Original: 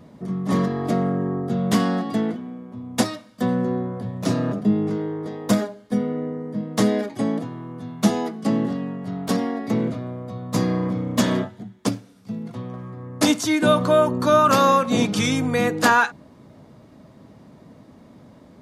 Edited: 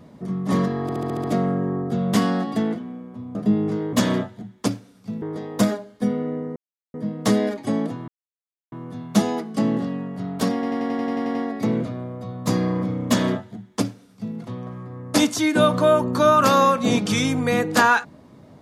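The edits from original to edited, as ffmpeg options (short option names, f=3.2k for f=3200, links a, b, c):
-filter_complex "[0:a]asplit=21[a][b][c][d][e][f][g][h][i][j][k][l][m][n][o][p][q][r][s][t][u];[a]atrim=end=0.892[v];[b]atrim=start=0.818:end=0.892[w];[c]atrim=start=0.818:end=0.892[x];[d]atrim=start=0.818:end=0.892[y];[e]atrim=start=0.818:end=0.892[z];[f]atrim=start=0.818:end=0.892[aa];[g]atrim=start=0.818:end=2.932[ab];[h]atrim=start=4.538:end=5.122[ac];[i]atrim=start=11.138:end=12.432[ad];[j]atrim=start=5.118:end=6.46,asetpts=PTS-STARTPTS,afade=t=out:st=1.338:d=0.004:c=hsin,apad=pad_dur=0.38[ae];[k]atrim=start=6.46:end=7.6,asetpts=PTS-STARTPTS,afade=t=in:d=0.004:c=hsin,afade=t=out:st=1.136:d=0.004:c=hsin,apad=pad_dur=0.64[af];[l]atrim=start=7.6:end=9.512,asetpts=PTS-STARTPTS,afade=t=in:d=0.004:c=hsin[ag];[m]atrim=start=9.418:end=9.512[ah];[n]atrim=start=9.418:end=9.512[ai];[o]atrim=start=9.418:end=9.512[aj];[p]atrim=start=9.418:end=9.512[ak];[q]atrim=start=9.418:end=9.512[al];[r]atrim=start=9.418:end=9.512[am];[s]atrim=start=9.418:end=9.512[an];[t]atrim=start=9.418:end=9.512[ao];[u]atrim=start=9.418[ap];[v][w]acrossfade=d=0.004:c1=hsin:c2=hsin[aq];[aq][x]acrossfade=d=0.004:c1=hsin:c2=hsin[ar];[ar][y]acrossfade=d=0.004:c1=hsin:c2=hsin[as];[as][z]acrossfade=d=0.004:c1=hsin:c2=hsin[at];[at][aa]acrossfade=d=0.004:c1=hsin:c2=hsin[au];[au][ab]acrossfade=d=0.004:c1=hsin:c2=hsin[av];[av][ac]acrossfade=d=0.004:c1=hsin:c2=hsin[aw];[aw][ad]acrossfade=d=0.004:c1=hsin:c2=hsin[ax];[ae][af][ag]concat=n=3:v=0:a=1[ay];[ax][ay]acrossfade=d=0.004:c1=hsin:c2=hsin[az];[az][ah]acrossfade=d=0.004:c1=hsin:c2=hsin[ba];[ba][ai]acrossfade=d=0.004:c1=hsin:c2=hsin[bb];[bb][aj]acrossfade=d=0.004:c1=hsin:c2=hsin[bc];[bc][ak]acrossfade=d=0.004:c1=hsin:c2=hsin[bd];[bd][al]acrossfade=d=0.004:c1=hsin:c2=hsin[be];[be][am]acrossfade=d=0.004:c1=hsin:c2=hsin[bf];[bf][an]acrossfade=d=0.004:c1=hsin:c2=hsin[bg];[bg][ao]acrossfade=d=0.004:c1=hsin:c2=hsin[bh];[bh][ap]acrossfade=d=0.004:c1=hsin:c2=hsin"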